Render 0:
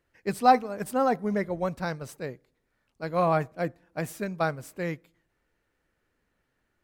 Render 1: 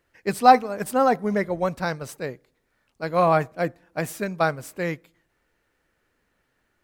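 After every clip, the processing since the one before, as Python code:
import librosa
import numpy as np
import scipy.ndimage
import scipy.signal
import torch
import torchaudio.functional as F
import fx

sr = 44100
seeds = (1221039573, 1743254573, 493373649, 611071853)

y = fx.low_shelf(x, sr, hz=340.0, db=-4.0)
y = F.gain(torch.from_numpy(y), 6.0).numpy()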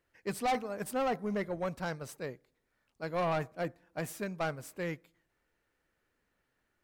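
y = 10.0 ** (-18.5 / 20.0) * np.tanh(x / 10.0 ** (-18.5 / 20.0))
y = F.gain(torch.from_numpy(y), -8.0).numpy()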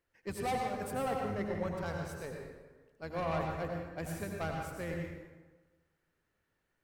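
y = fx.octave_divider(x, sr, octaves=1, level_db=-5.0)
y = fx.rev_plate(y, sr, seeds[0], rt60_s=1.3, hf_ratio=0.65, predelay_ms=75, drr_db=0.5)
y = F.gain(torch.from_numpy(y), -5.0).numpy()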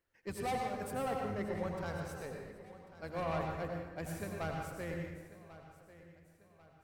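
y = fx.echo_feedback(x, sr, ms=1093, feedback_pct=41, wet_db=-17.0)
y = F.gain(torch.from_numpy(y), -2.0).numpy()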